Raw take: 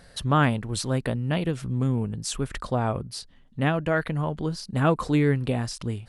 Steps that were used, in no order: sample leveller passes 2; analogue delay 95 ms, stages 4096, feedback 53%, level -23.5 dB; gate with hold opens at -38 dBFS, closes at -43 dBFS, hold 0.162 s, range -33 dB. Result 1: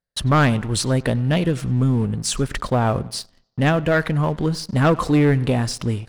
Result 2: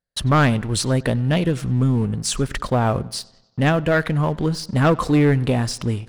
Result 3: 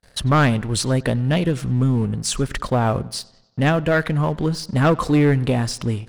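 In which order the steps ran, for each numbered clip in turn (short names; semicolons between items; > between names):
gate with hold > analogue delay > sample leveller; gate with hold > sample leveller > analogue delay; sample leveller > gate with hold > analogue delay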